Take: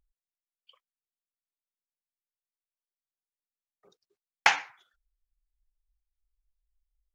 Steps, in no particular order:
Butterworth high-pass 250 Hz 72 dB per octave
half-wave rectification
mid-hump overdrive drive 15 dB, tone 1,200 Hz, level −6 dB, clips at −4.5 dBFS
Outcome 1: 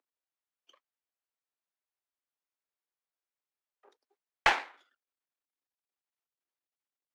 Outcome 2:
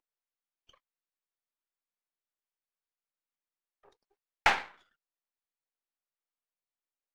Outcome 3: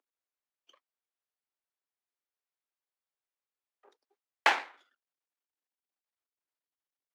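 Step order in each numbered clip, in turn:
half-wave rectification, then Butterworth high-pass, then mid-hump overdrive
Butterworth high-pass, then half-wave rectification, then mid-hump overdrive
half-wave rectification, then mid-hump overdrive, then Butterworth high-pass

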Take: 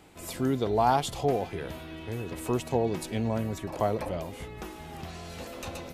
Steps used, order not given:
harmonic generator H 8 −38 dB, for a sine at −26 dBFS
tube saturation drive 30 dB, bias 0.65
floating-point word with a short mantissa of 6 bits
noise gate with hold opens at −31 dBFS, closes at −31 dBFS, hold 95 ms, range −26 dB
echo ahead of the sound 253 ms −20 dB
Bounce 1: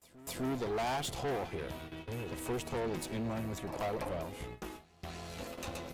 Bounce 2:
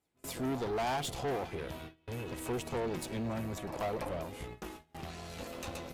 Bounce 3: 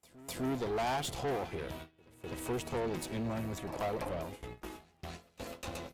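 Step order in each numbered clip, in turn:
noise gate with hold, then harmonic generator, then floating-point word with a short mantissa, then tube saturation, then echo ahead of the sound
echo ahead of the sound, then noise gate with hold, then tube saturation, then floating-point word with a short mantissa, then harmonic generator
floating-point word with a short mantissa, then tube saturation, then harmonic generator, then noise gate with hold, then echo ahead of the sound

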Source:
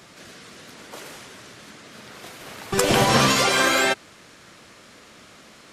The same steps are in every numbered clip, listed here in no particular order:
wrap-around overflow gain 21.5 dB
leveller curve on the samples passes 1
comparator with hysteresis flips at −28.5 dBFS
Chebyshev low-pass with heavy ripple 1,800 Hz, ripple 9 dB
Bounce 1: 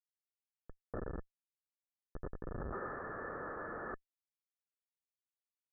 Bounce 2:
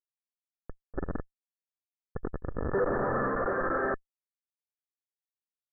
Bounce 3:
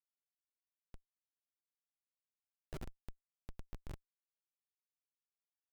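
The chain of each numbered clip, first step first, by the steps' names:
leveller curve on the samples, then wrap-around overflow, then comparator with hysteresis, then Chebyshev low-pass with heavy ripple
leveller curve on the samples, then comparator with hysteresis, then wrap-around overflow, then Chebyshev low-pass with heavy ripple
wrap-around overflow, then leveller curve on the samples, then Chebyshev low-pass with heavy ripple, then comparator with hysteresis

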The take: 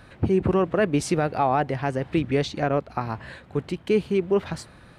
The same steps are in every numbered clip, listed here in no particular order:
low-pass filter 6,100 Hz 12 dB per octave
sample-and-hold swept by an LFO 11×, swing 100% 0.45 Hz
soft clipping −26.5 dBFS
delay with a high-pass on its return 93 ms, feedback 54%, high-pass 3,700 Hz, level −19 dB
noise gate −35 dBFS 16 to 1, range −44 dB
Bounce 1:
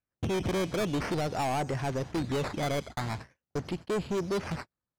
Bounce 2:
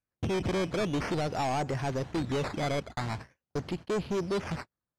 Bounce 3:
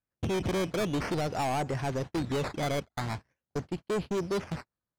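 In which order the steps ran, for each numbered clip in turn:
sample-and-hold swept by an LFO, then delay with a high-pass on its return, then noise gate, then low-pass filter, then soft clipping
delay with a high-pass on its return, then sample-and-hold swept by an LFO, then noise gate, then soft clipping, then low-pass filter
delay with a high-pass on its return, then sample-and-hold swept by an LFO, then low-pass filter, then soft clipping, then noise gate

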